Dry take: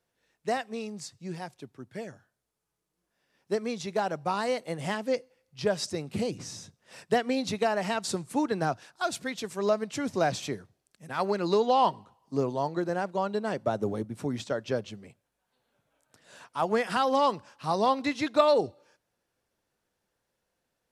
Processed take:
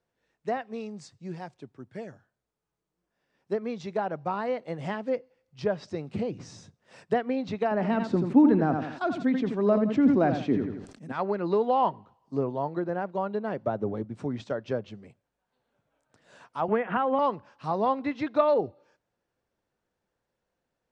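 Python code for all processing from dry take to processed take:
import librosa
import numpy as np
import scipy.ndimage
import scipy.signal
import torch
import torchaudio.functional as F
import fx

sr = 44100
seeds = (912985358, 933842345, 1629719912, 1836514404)

y = fx.chain(x, sr, fx.peak_eq(hz=260.0, db=13.0, octaves=0.8),
    fx.echo_feedback(ms=84, feedback_pct=24, wet_db=-11),
    fx.sustainer(db_per_s=63.0), at=(7.71, 11.12))
y = fx.chain(y, sr, fx.steep_lowpass(hz=3100.0, slope=36),
    fx.band_squash(depth_pct=100), at=(16.68, 17.19))
y = scipy.signal.sosfilt(scipy.signal.butter(4, 9100.0, 'lowpass', fs=sr, output='sos'), y)
y = fx.env_lowpass_down(y, sr, base_hz=2700.0, full_db=-25.0)
y = fx.high_shelf(y, sr, hz=2600.0, db=-9.0)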